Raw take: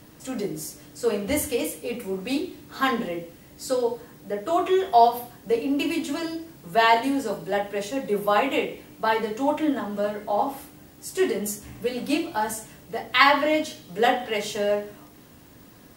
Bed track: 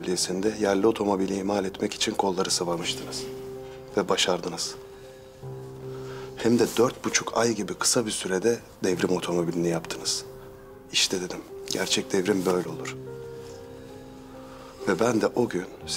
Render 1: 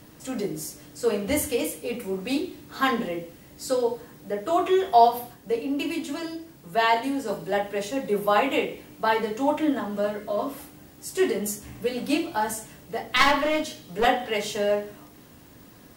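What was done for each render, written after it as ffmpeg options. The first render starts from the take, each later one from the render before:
-filter_complex "[0:a]asettb=1/sr,asplit=3[a][b][c];[a]atrim=end=10.184[d];[b]atrim=start=10.18:end=10.59,asetpts=PTS-STARTPTS,afade=t=in:d=0.004:c=qsin,afade=t=out:st=0.406:d=0.004:c=qsin,asuperstop=centerf=820:order=4:qfactor=3.4[e];[c]atrim=start=10.586[f];[d][e]acrossfade=d=0.004:c1=hsin:c2=qsin[g];[g][f]acrossfade=d=0.004:c1=qsin:c2=hsin,asettb=1/sr,asplit=3[h][i][j];[h]atrim=end=13.164[k];[i]atrim=start=13.16:end=14.05,asetpts=PTS-STARTPTS,afade=t=in:d=0.004:c=qsin,afade=t=out:st=0.886:d=0.004:c=qsin,aeval=exprs='clip(val(0),-1,0.0708)':c=same[l];[j]atrim=start=14.046[m];[k][l]acrossfade=d=0.004:c1=hsin:c2=qsin[n];[n][m]acrossfade=d=0.004:c1=qsin:c2=hsin,asplit=3[o][p][q];[o]atrim=end=5.342[r];[p]atrim=start=5.338:end=7.282,asetpts=PTS-STARTPTS,volume=-3dB[s];[q]atrim=start=7.278[t];[r][s]acrossfade=d=0.004:c1=hsin:c2=hsin[u];[u][t]acrossfade=d=0.004:c1=hsin:c2=hsin"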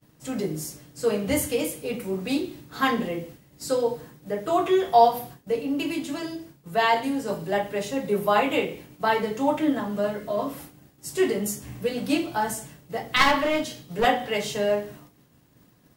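-af "agate=range=-33dB:threshold=-41dB:ratio=3:detection=peak,equalizer=f=140:w=2:g=7"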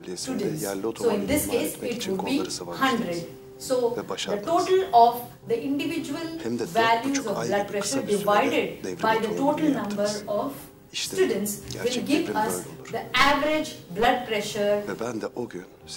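-filter_complex "[1:a]volume=-7.5dB[a];[0:a][a]amix=inputs=2:normalize=0"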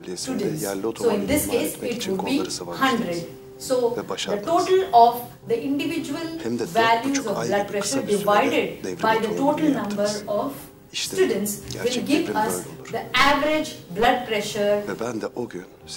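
-af "volume=2.5dB,alimiter=limit=-2dB:level=0:latency=1"

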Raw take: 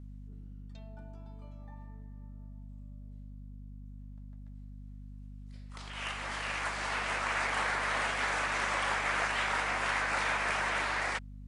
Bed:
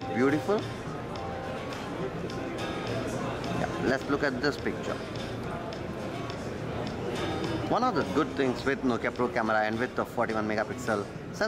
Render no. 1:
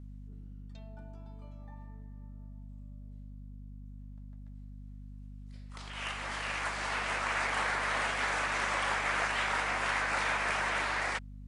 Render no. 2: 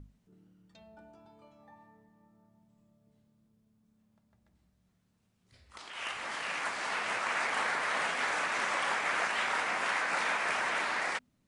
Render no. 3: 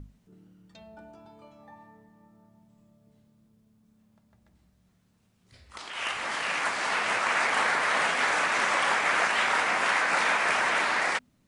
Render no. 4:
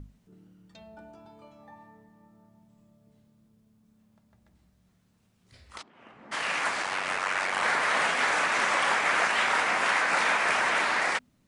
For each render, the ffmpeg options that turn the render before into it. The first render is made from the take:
-af anull
-af "bandreject=f=50:t=h:w=6,bandreject=f=100:t=h:w=6,bandreject=f=150:t=h:w=6,bandreject=f=200:t=h:w=6,bandreject=f=250:t=h:w=6"
-af "volume=6.5dB"
-filter_complex "[0:a]asplit=3[a][b][c];[a]afade=t=out:st=5.81:d=0.02[d];[b]bandpass=f=200:t=q:w=1.8,afade=t=in:st=5.81:d=0.02,afade=t=out:st=6.31:d=0.02[e];[c]afade=t=in:st=6.31:d=0.02[f];[d][e][f]amix=inputs=3:normalize=0,asettb=1/sr,asplit=3[g][h][i];[g]atrim=end=6.824[j];[h]atrim=start=6.82:end=7.63,asetpts=PTS-STARTPTS,afade=t=in:d=0.004:c=qsin,afade=t=out:st=0.806:d=0.004:c=qsin,aeval=exprs='val(0)*sin(2*PI*47*n/s)':c=same[k];[i]atrim=start=7.626[l];[j][k]acrossfade=d=0.004:c1=hsin:c2=qsin[m];[m][l]acrossfade=d=0.004:c1=qsin:c2=hsin"

